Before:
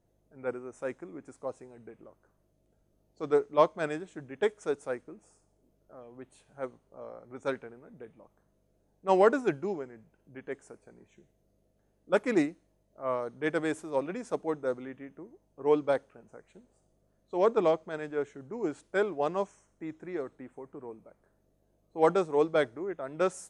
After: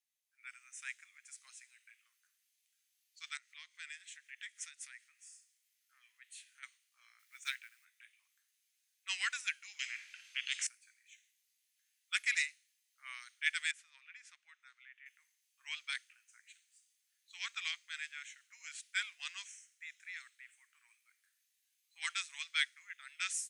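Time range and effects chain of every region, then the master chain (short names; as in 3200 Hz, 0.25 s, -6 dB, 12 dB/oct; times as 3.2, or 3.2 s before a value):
3.37–6.63 bell 1900 Hz +5.5 dB 0.22 oct + compressor 2.5:1, threshold -45 dBFS
7.19–7.85 HPF 48 Hz + companded quantiser 8-bit
9.79–10.67 air absorption 110 m + spectral compressor 10:1
13.71–15.06 LPF 3700 Hz 6 dB/oct + compressor 1.5:1, threshold -45 dBFS + high shelf 2500 Hz -10.5 dB
whole clip: steep high-pass 2000 Hz 36 dB/oct; AGC gain up to 11.5 dB; gain -2.5 dB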